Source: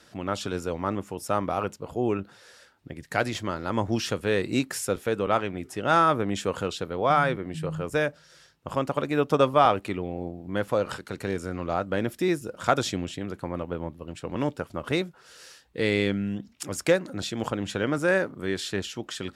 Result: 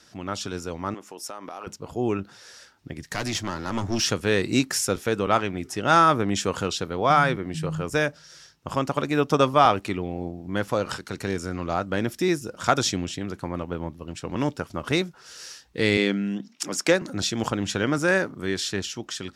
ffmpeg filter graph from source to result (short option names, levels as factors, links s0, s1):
-filter_complex "[0:a]asettb=1/sr,asplit=3[s0][s1][s2];[s0]atrim=end=0.944[s3];[s1]atrim=start=0.94:end=1.67,asetpts=PTS-STARTPTS,afade=t=in:d=0.004:c=qsin,afade=t=out:st=0.726:d=0.004:c=qsin,highpass=330,acompressor=threshold=0.0251:ratio=5:attack=3.2:release=140:knee=1:detection=peak[s4];[s2]atrim=start=1.666[s5];[s3][s4]acrossfade=d=0.004:c1=hsin:c2=qsin[s6];[s6][s5]acrossfade=d=0.004:c1=qsin:c2=hsin,asettb=1/sr,asplit=3[s7][s8][s9];[s7]atrim=end=2.984[s10];[s8]atrim=start=2.98:end=4.04,asetpts=PTS-STARTPTS,afade=t=in:d=0.004:c=qsin,afade=t=out:st=1.056:d=0.004:c=qsin,acrossover=split=360|3000[s11][s12][s13];[s12]acompressor=threshold=0.0355:ratio=3:attack=3.2:release=140:knee=2.83:detection=peak[s14];[s11][s14][s13]amix=inputs=3:normalize=0,aeval=exprs='clip(val(0),-1,0.0335)':c=same[s15];[s9]atrim=start=4.036[s16];[s10][s15]acrossfade=d=0.004:c1=hsin:c2=qsin[s17];[s17][s16]acrossfade=d=0.004:c1=qsin:c2=hsin,asettb=1/sr,asplit=3[s18][s19][s20];[s18]atrim=end=15.974[s21];[s19]atrim=start=15.97:end=17.02,asetpts=PTS-STARTPTS,afade=t=in:d=0.004:c=qsin,afade=t=out:st=1.046:d=0.004:c=qsin,highpass=f=180:w=0.5412,highpass=f=180:w=1.3066,highshelf=f=9700:g=-7[s22];[s20]atrim=start=17.016[s23];[s21][s22]acrossfade=d=0.004:c1=hsin:c2=qsin[s24];[s24][s23]acrossfade=d=0.004:c1=qsin:c2=hsin,equalizer=f=5700:t=o:w=0.62:g=7.5,dynaudnorm=f=910:g=5:m=2,equalizer=f=530:t=o:w=0.61:g=-4,volume=0.891"